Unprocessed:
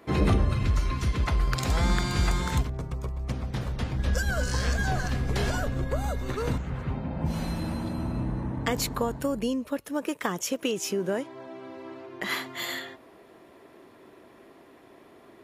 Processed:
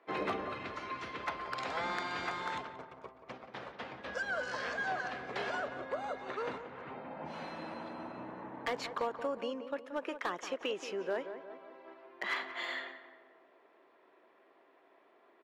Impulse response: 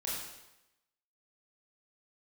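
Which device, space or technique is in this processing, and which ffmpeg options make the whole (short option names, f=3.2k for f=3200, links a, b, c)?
walkie-talkie: -filter_complex "[0:a]highpass=510,lowpass=2.8k,asoftclip=type=hard:threshold=-24dB,agate=range=-6dB:threshold=-44dB:ratio=16:detection=peak,asplit=2[a][b];[b]adelay=179,lowpass=f=1.9k:p=1,volume=-10dB,asplit=2[c][d];[d]adelay=179,lowpass=f=1.9k:p=1,volume=0.53,asplit=2[e][f];[f]adelay=179,lowpass=f=1.9k:p=1,volume=0.53,asplit=2[g][h];[h]adelay=179,lowpass=f=1.9k:p=1,volume=0.53,asplit=2[i][j];[j]adelay=179,lowpass=f=1.9k:p=1,volume=0.53,asplit=2[k][l];[l]adelay=179,lowpass=f=1.9k:p=1,volume=0.53[m];[a][c][e][g][i][k][m]amix=inputs=7:normalize=0,volume=-3dB"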